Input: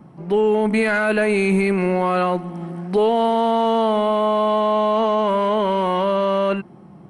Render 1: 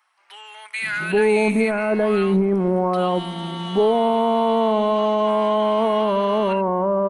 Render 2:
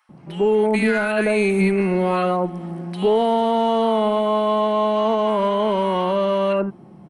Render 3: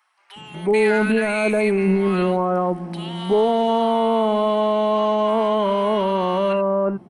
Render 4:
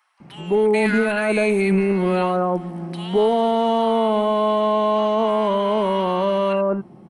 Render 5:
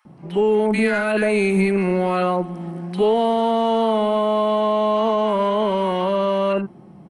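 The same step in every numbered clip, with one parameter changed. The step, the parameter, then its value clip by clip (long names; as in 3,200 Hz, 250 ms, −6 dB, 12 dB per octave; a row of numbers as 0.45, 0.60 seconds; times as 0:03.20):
multiband delay without the direct sound, delay time: 820, 90, 360, 200, 50 milliseconds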